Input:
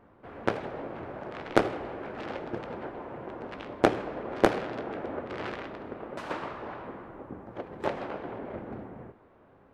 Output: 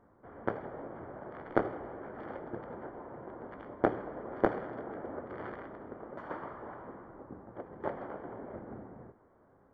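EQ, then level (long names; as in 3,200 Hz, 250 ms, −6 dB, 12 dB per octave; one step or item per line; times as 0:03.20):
Savitzky-Golay smoothing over 41 samples
−5.5 dB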